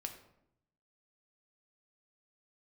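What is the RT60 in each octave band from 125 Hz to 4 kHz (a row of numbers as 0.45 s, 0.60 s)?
1.1 s, 1.0 s, 0.80 s, 0.75 s, 0.60 s, 0.45 s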